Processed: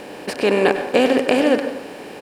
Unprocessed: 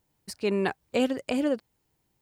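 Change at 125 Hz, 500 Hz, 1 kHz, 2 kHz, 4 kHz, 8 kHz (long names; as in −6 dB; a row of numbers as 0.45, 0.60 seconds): +5.0, +12.0, +13.0, +13.0, +11.5, +8.0 decibels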